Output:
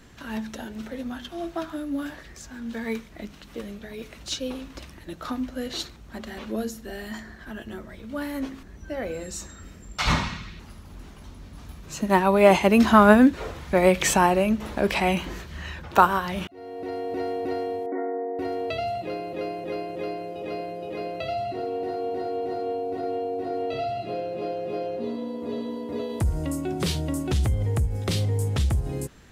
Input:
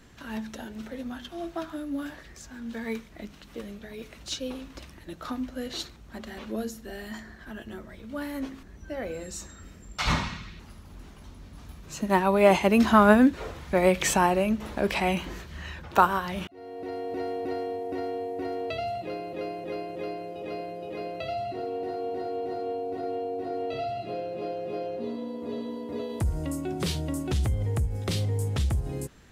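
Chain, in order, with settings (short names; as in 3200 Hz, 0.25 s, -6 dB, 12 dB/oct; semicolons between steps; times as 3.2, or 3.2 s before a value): 17.86–18.39 brick-wall FIR band-pass 210–2300 Hz; gain +3 dB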